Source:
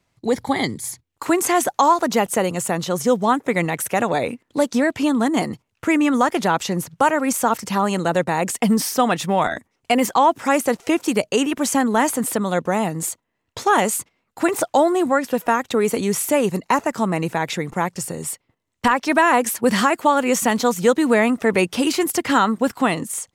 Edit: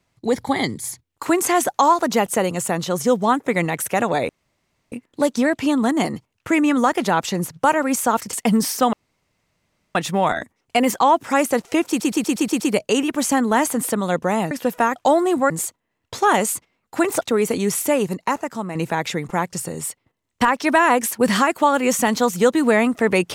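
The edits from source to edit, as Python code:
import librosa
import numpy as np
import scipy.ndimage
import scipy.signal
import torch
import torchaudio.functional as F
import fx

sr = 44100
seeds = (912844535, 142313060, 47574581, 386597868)

y = fx.edit(x, sr, fx.insert_room_tone(at_s=4.29, length_s=0.63),
    fx.cut(start_s=7.7, length_s=0.8),
    fx.insert_room_tone(at_s=9.1, length_s=1.02),
    fx.stutter(start_s=11.03, slice_s=0.12, count=7),
    fx.swap(start_s=12.94, length_s=1.71, other_s=15.19, other_length_s=0.45),
    fx.fade_out_to(start_s=16.25, length_s=0.93, floor_db=-8.5), tone=tone)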